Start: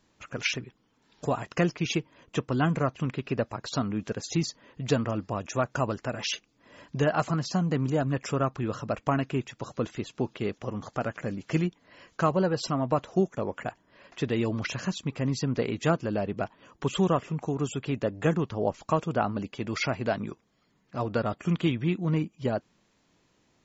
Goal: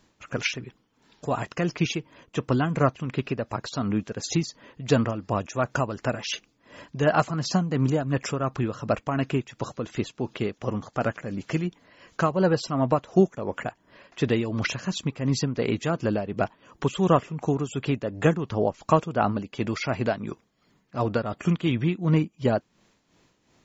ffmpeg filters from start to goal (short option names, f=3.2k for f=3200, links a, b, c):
-af "tremolo=f=2.8:d=0.62,volume=6dB"